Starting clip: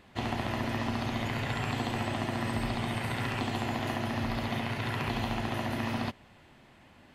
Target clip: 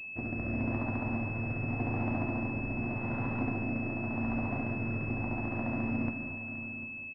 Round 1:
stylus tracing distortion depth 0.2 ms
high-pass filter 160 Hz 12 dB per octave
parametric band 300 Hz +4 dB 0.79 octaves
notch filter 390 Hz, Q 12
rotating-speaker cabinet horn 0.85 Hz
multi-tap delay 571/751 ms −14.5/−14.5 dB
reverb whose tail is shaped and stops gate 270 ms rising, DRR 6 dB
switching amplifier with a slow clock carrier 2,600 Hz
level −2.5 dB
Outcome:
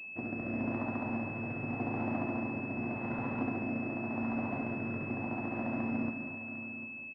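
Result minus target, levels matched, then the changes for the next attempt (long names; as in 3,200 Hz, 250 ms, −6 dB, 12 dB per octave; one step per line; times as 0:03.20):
125 Hz band −4.5 dB
remove: high-pass filter 160 Hz 12 dB per octave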